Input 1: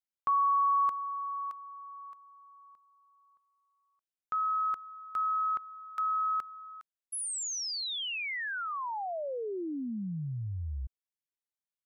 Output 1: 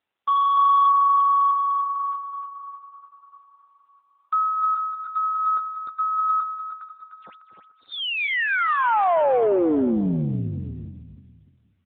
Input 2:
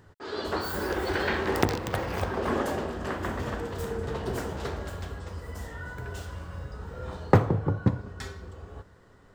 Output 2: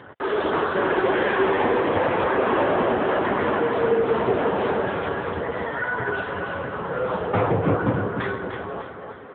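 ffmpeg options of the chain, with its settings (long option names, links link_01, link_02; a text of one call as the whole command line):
ffmpeg -i in.wav -filter_complex "[0:a]asplit=2[link_01][link_02];[link_02]highpass=frequency=720:poles=1,volume=36dB,asoftclip=type=tanh:threshold=-3dB[link_03];[link_01][link_03]amix=inputs=2:normalize=0,lowpass=frequency=1100:poles=1,volume=-6dB,aecho=1:1:301|602|903|1204:0.473|0.18|0.0683|0.026,volume=-5.5dB" -ar 8000 -c:a libopencore_amrnb -b:a 6700 out.amr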